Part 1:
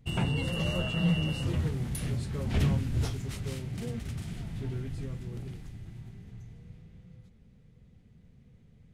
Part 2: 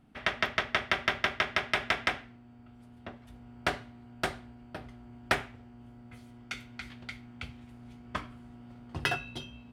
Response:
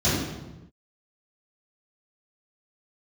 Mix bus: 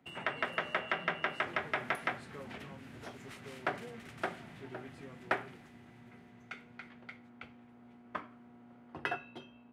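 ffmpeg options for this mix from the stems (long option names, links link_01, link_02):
-filter_complex "[0:a]tiltshelf=frequency=970:gain=-6.5,acompressor=threshold=-38dB:ratio=12,volume=1dB[link_01];[1:a]volume=-3dB[link_02];[link_01][link_02]amix=inputs=2:normalize=0,highpass=100,acrossover=split=220 2300:gain=0.224 1 0.158[link_03][link_04][link_05];[link_03][link_04][link_05]amix=inputs=3:normalize=0"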